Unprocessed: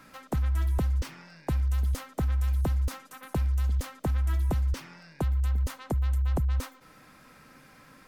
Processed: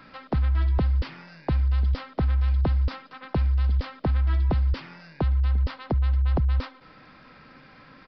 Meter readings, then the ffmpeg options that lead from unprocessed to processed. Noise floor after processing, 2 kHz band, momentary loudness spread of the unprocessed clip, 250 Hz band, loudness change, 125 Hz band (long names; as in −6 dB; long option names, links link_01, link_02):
−52 dBFS, +4.0 dB, 7 LU, +4.0 dB, +4.0 dB, +4.0 dB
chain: -af "aresample=11025,aresample=44100,volume=4dB"